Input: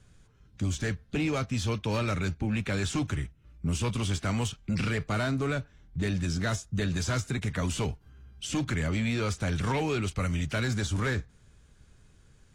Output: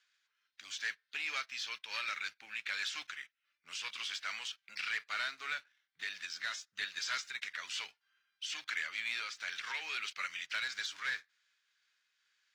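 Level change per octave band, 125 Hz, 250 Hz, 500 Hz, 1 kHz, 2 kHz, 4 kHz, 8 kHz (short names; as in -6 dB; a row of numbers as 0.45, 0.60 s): under -40 dB, under -35 dB, -26.5 dB, -8.5 dB, -1.0 dB, -0.5 dB, -8.0 dB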